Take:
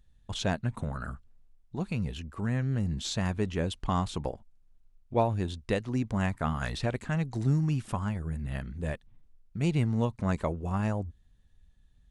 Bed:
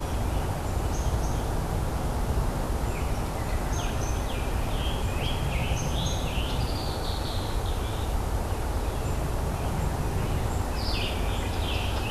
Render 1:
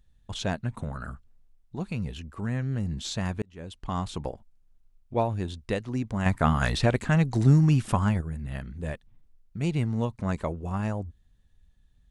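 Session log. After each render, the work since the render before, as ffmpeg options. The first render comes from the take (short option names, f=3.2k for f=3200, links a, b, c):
-filter_complex "[0:a]asplit=4[a][b][c][d];[a]atrim=end=3.42,asetpts=PTS-STARTPTS,afade=t=out:st=3.416:d=0.004:c=hsin[e];[b]atrim=start=3.42:end=6.262,asetpts=PTS-STARTPTS,afade=t=in:d=0.68[f];[c]atrim=start=6.258:end=8.212,asetpts=PTS-STARTPTS,volume=7.5dB[g];[d]atrim=start=8.208[h];[e][f]concat=n=2:v=0:a=1[i];[i][g]acrossfade=d=0.004:c1=hsin:c2=hsin[j];[j][h]acrossfade=d=0.004:c1=hsin:c2=hsin"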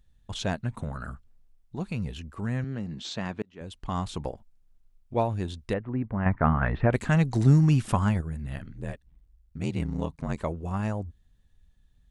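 -filter_complex "[0:a]asettb=1/sr,asplit=3[a][b][c];[a]atrim=end=2.644[d];[b]atrim=start=2.64:end=3.61,asetpts=PTS-STARTPTS,afade=t=in:d=0.004:c=qsin,afade=t=out:st=0.966:d=0.004:c=qsin,highpass=170,lowpass=4.9k[e];[c]atrim=start=3.606[f];[d][e]acrossfade=d=0.004:c1=hsin:c2=qsin[g];[g][f]acrossfade=d=0.004:c1=qsin:c2=hsin,asettb=1/sr,asplit=3[h][i][j];[h]atrim=end=5.734[k];[i]atrim=start=5.73:end=6.93,asetpts=PTS-STARTPTS,afade=t=in:d=0.004:c=qsin,afade=t=out:st=1.196:d=0.004:c=qsin,lowpass=f=2k:w=0.5412,lowpass=f=2k:w=1.3066[l];[j]atrim=start=6.926[m];[k][l]acrossfade=d=0.004:c1=hsin:c2=qsin[n];[n][m]acrossfade=d=0.004:c1=qsin:c2=hsin,asettb=1/sr,asplit=3[o][p][q];[o]atrim=end=8.554[r];[p]atrim=start=8.55:end=10.37,asetpts=PTS-STARTPTS,afade=t=in:d=0.004:c=qsin,afade=t=out:st=1.816:d=0.004:c=qsin,aeval=exprs='val(0)*sin(2*PI*41*n/s)':c=same[s];[q]atrim=start=10.366[t];[r][s]acrossfade=d=0.004:c1=hsin:c2=qsin[u];[u][t]acrossfade=d=0.004:c1=qsin:c2=hsin"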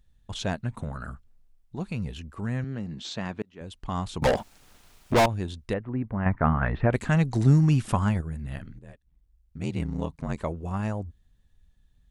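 -filter_complex "[0:a]asettb=1/sr,asplit=3[a][b][c];[a]atrim=end=4.224[d];[b]atrim=start=4.22:end=5.26,asetpts=PTS-STARTPTS,afade=t=in:d=0.004:c=qsin,afade=t=out:st=1.036:d=0.004:c=qsin,asplit=2[e][f];[f]highpass=f=720:p=1,volume=38dB,asoftclip=type=tanh:threshold=-12.5dB[g];[e][g]amix=inputs=2:normalize=0,lowpass=f=7.9k:p=1,volume=-6dB[h];[c]atrim=start=5.256[i];[d][h]acrossfade=d=0.004:c1=hsin:c2=qsin[j];[j][i]acrossfade=d=0.004:c1=qsin:c2=hsin,asplit=2[k][l];[k]atrim=end=8.79,asetpts=PTS-STARTPTS,afade=t=out:st=8.786:d=0.004:c=hsin:silence=0.16788[m];[l]atrim=start=8.79,asetpts=PTS-STARTPTS,afade=t=in:d=0.96:silence=0.16788[n];[m][n]concat=n=2:v=0:a=1"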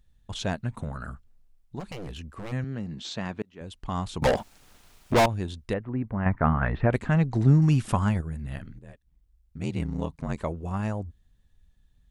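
-filter_complex "[0:a]asplit=3[a][b][c];[a]afade=t=out:st=1.79:d=0.02[d];[b]aeval=exprs='0.0266*(abs(mod(val(0)/0.0266+3,4)-2)-1)':c=same,afade=t=in:st=1.79:d=0.02,afade=t=out:st=2.51:d=0.02[e];[c]afade=t=in:st=2.51:d=0.02[f];[d][e][f]amix=inputs=3:normalize=0,asettb=1/sr,asplit=3[g][h][i];[g]atrim=end=6.984[j];[h]atrim=start=6.98:end=7.62,asetpts=PTS-STARTPTS,afade=t=in:d=0.004:c=qsin,afade=t=out:st=0.636:d=0.004:c=qsin,lowpass=f=2.1k:p=1[k];[i]atrim=start=7.616[l];[j][k]acrossfade=d=0.004:c1=hsin:c2=qsin[m];[m][l]acrossfade=d=0.004:c1=qsin:c2=hsin"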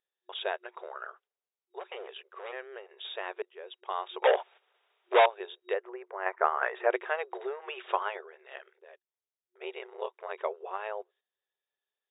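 -af "agate=range=-11dB:threshold=-49dB:ratio=16:detection=peak,afftfilt=real='re*between(b*sr/4096,360,3800)':imag='im*between(b*sr/4096,360,3800)':win_size=4096:overlap=0.75"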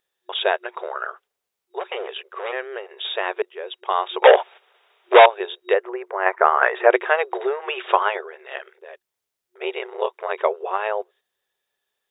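-af "alimiter=level_in=12.5dB:limit=-1dB:release=50:level=0:latency=1"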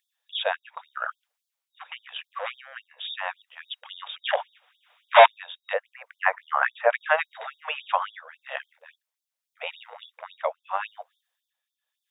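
-af "tremolo=f=0.81:d=0.49,afftfilt=real='re*gte(b*sr/1024,460*pow(3400/460,0.5+0.5*sin(2*PI*3.6*pts/sr)))':imag='im*gte(b*sr/1024,460*pow(3400/460,0.5+0.5*sin(2*PI*3.6*pts/sr)))':win_size=1024:overlap=0.75"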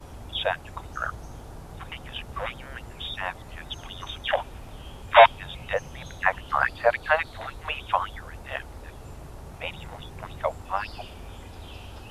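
-filter_complex "[1:a]volume=-13.5dB[a];[0:a][a]amix=inputs=2:normalize=0"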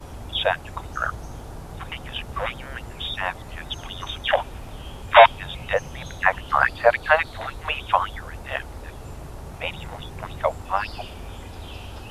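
-af "volume=4.5dB,alimiter=limit=-1dB:level=0:latency=1"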